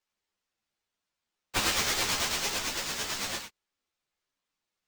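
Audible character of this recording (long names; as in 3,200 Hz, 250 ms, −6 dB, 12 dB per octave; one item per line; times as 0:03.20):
aliases and images of a low sample rate 12,000 Hz, jitter 0%
a shimmering, thickened sound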